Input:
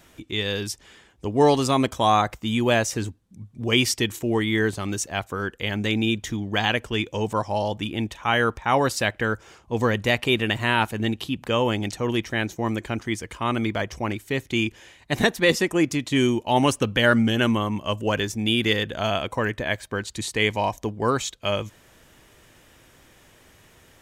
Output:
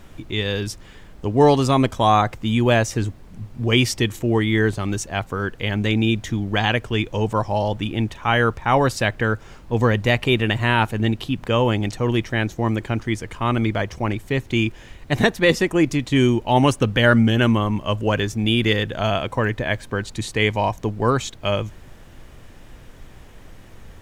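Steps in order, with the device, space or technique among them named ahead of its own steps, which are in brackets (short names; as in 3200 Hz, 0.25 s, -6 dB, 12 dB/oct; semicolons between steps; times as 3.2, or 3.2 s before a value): car interior (bell 120 Hz +5 dB 0.69 oct; high shelf 4200 Hz -6.5 dB; brown noise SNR 20 dB); gain +3 dB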